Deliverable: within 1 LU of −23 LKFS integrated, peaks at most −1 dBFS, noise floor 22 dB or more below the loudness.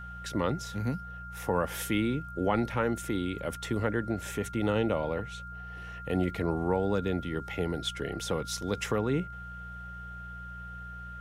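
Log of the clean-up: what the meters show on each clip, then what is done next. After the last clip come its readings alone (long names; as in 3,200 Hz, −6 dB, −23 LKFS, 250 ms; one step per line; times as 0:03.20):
mains hum 60 Hz; hum harmonics up to 180 Hz; level of the hum −42 dBFS; interfering tone 1,400 Hz; level of the tone −42 dBFS; integrated loudness −31.5 LKFS; sample peak −13.5 dBFS; target loudness −23.0 LKFS
→ hum removal 60 Hz, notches 3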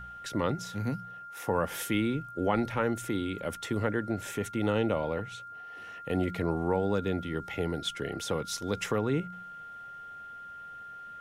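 mains hum none found; interfering tone 1,400 Hz; level of the tone −42 dBFS
→ notch filter 1,400 Hz, Q 30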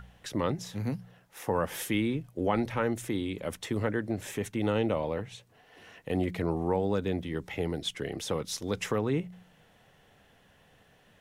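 interfering tone none found; integrated loudness −32.0 LKFS; sample peak −13.5 dBFS; target loudness −23.0 LKFS
→ level +9 dB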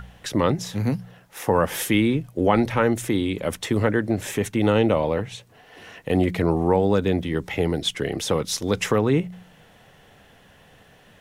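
integrated loudness −23.0 LKFS; sample peak −4.5 dBFS; background noise floor −53 dBFS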